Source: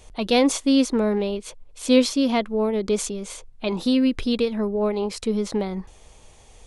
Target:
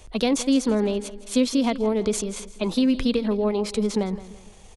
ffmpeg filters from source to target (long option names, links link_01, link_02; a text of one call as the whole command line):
ffmpeg -i in.wav -filter_complex "[0:a]acrossover=split=230[link_01][link_02];[link_02]acompressor=threshold=-22dB:ratio=5[link_03];[link_01][link_03]amix=inputs=2:normalize=0,aecho=1:1:233|466|699|932:0.168|0.0672|0.0269|0.0107,atempo=1.4,volume=1.5dB" out.wav